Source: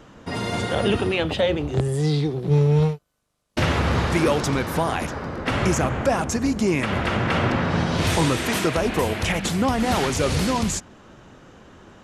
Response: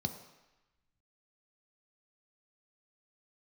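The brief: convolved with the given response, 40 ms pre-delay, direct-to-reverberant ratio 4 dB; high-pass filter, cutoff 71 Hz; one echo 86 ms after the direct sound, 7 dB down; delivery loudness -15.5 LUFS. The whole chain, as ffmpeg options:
-filter_complex "[0:a]highpass=71,aecho=1:1:86:0.447,asplit=2[a][b];[1:a]atrim=start_sample=2205,adelay=40[c];[b][c]afir=irnorm=-1:irlink=0,volume=-5.5dB[d];[a][d]amix=inputs=2:normalize=0,volume=1dB"

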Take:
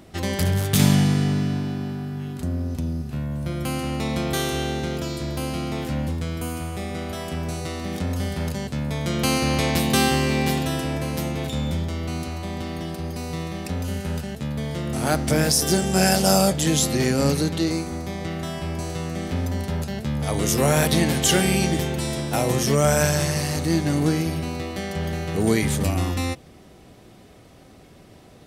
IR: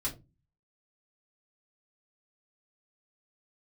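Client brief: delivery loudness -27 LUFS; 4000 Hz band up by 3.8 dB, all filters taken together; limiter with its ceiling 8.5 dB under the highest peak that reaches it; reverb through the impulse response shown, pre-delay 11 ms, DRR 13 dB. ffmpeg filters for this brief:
-filter_complex "[0:a]equalizer=f=4k:t=o:g=5,alimiter=limit=-11dB:level=0:latency=1,asplit=2[a][b];[1:a]atrim=start_sample=2205,adelay=11[c];[b][c]afir=irnorm=-1:irlink=0,volume=-15.5dB[d];[a][d]amix=inputs=2:normalize=0,volume=-2.5dB"

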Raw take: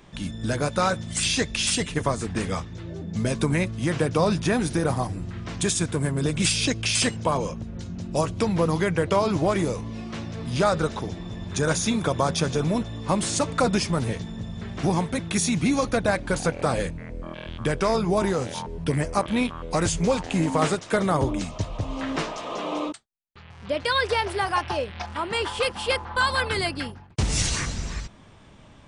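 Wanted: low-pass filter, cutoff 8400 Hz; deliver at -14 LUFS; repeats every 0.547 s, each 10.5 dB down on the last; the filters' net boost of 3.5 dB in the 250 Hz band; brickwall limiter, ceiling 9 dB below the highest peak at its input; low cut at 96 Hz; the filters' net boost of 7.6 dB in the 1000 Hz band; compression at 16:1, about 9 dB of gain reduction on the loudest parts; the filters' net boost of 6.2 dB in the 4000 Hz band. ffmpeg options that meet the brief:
-af "highpass=96,lowpass=8.4k,equalizer=f=250:t=o:g=4.5,equalizer=f=1k:t=o:g=8.5,equalizer=f=4k:t=o:g=7.5,acompressor=threshold=-20dB:ratio=16,alimiter=limit=-16dB:level=0:latency=1,aecho=1:1:547|1094|1641:0.299|0.0896|0.0269,volume=13dB"

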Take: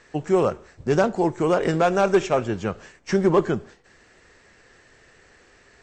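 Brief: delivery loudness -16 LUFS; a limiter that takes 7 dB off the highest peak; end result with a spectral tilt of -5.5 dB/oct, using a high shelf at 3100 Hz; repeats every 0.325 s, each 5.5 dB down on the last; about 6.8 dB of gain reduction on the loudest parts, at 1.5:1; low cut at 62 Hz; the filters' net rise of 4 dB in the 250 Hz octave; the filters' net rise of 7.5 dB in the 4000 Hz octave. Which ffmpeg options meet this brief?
-af "highpass=62,equalizer=f=250:t=o:g=6.5,highshelf=f=3.1k:g=4.5,equalizer=f=4k:t=o:g=7,acompressor=threshold=-30dB:ratio=1.5,alimiter=limit=-18dB:level=0:latency=1,aecho=1:1:325|650|975|1300|1625|1950|2275:0.531|0.281|0.149|0.079|0.0419|0.0222|0.0118,volume=12dB"

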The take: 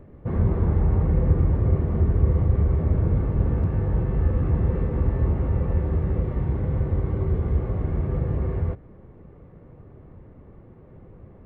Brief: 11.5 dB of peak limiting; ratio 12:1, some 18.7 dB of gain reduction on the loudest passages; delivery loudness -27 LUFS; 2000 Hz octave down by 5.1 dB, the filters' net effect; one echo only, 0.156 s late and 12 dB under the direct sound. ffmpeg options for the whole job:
-af "equalizer=f=2k:t=o:g=-6.5,acompressor=threshold=-34dB:ratio=12,alimiter=level_in=12dB:limit=-24dB:level=0:latency=1,volume=-12dB,aecho=1:1:156:0.251,volume=17.5dB"

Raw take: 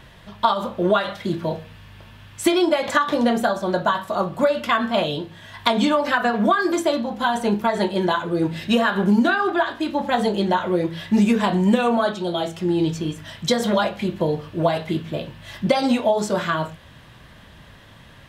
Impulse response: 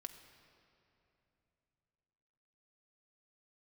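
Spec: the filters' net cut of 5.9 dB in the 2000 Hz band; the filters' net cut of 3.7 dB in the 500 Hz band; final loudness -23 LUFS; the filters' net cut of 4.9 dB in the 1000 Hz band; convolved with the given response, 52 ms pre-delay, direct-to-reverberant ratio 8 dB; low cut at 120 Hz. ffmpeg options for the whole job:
-filter_complex "[0:a]highpass=120,equalizer=f=500:t=o:g=-3.5,equalizer=f=1k:t=o:g=-3.5,equalizer=f=2k:t=o:g=-6.5,asplit=2[a][b];[1:a]atrim=start_sample=2205,adelay=52[c];[b][c]afir=irnorm=-1:irlink=0,volume=-3.5dB[d];[a][d]amix=inputs=2:normalize=0,volume=0.5dB"

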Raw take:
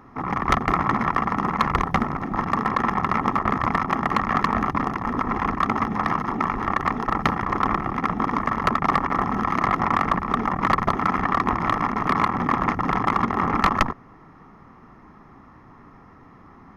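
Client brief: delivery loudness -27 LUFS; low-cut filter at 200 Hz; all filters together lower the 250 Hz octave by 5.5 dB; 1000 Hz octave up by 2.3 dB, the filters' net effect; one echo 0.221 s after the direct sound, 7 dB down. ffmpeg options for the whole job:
-af "highpass=200,equalizer=f=250:t=o:g=-4.5,equalizer=f=1k:t=o:g=3,aecho=1:1:221:0.447,volume=-6dB"

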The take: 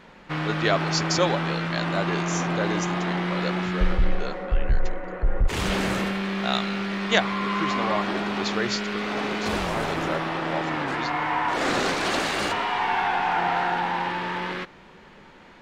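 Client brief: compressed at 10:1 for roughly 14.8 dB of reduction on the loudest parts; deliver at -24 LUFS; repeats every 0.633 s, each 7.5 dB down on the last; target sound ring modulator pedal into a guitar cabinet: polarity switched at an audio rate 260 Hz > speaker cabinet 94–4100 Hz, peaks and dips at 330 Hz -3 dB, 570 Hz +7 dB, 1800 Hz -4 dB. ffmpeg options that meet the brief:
-af "acompressor=threshold=-31dB:ratio=10,aecho=1:1:633|1266|1899|2532|3165:0.422|0.177|0.0744|0.0312|0.0131,aeval=exprs='val(0)*sgn(sin(2*PI*260*n/s))':c=same,highpass=94,equalizer=f=330:t=q:w=4:g=-3,equalizer=f=570:t=q:w=4:g=7,equalizer=f=1.8k:t=q:w=4:g=-4,lowpass=f=4.1k:w=0.5412,lowpass=f=4.1k:w=1.3066,volume=9.5dB"

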